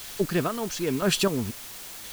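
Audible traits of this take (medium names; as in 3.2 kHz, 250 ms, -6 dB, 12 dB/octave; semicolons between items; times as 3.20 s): chopped level 0.98 Hz, depth 60%, duty 25%; a quantiser's noise floor 8-bit, dither triangular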